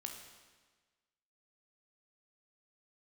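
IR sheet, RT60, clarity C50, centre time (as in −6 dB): 1.4 s, 5.0 dB, 38 ms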